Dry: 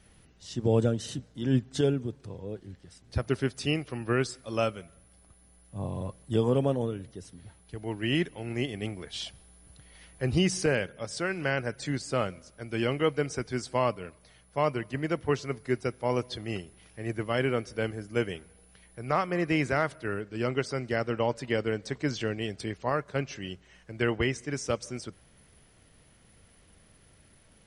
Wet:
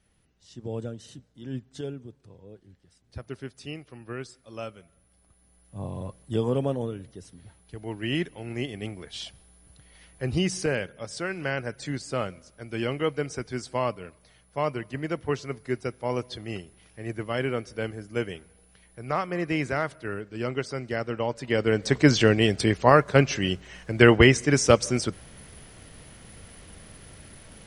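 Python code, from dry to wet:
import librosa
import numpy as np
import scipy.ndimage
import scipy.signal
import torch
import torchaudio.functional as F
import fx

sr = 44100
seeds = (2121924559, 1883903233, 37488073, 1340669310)

y = fx.gain(x, sr, db=fx.line((4.53, -9.5), (5.8, -0.5), (21.34, -0.5), (21.96, 12.0)))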